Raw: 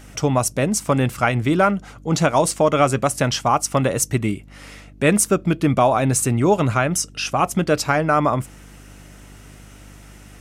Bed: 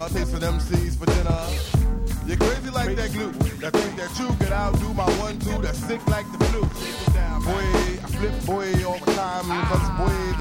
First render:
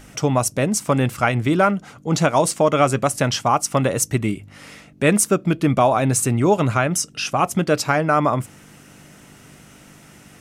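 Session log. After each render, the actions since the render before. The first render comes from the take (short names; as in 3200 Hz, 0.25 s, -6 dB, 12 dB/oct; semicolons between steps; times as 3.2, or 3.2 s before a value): de-hum 50 Hz, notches 2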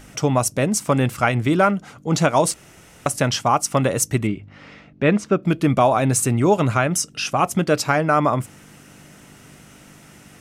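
2.54–3.06 room tone; 4.27–5.43 air absorption 200 m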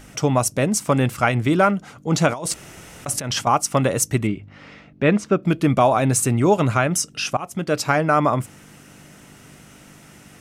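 2.28–3.47 negative-ratio compressor -26 dBFS; 7.37–7.9 fade in linear, from -17.5 dB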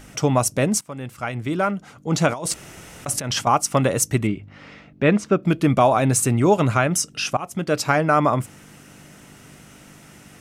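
0.81–2.44 fade in, from -20 dB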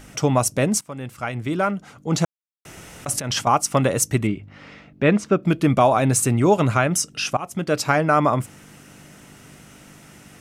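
2.25–2.65 mute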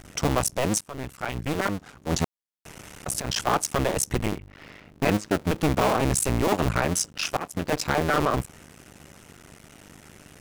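cycle switcher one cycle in 2, muted; soft clip -13 dBFS, distortion -14 dB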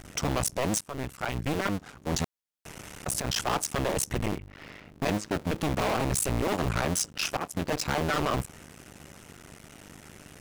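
hard clip -22.5 dBFS, distortion -9 dB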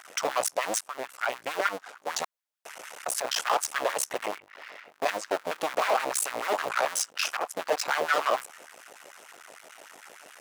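LFO high-pass sine 6.7 Hz 510–1600 Hz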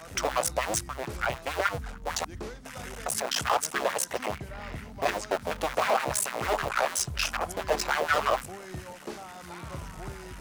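add bed -18.5 dB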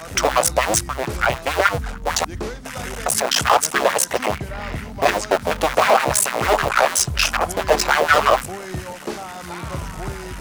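gain +10.5 dB; limiter -2 dBFS, peak gain reduction 1 dB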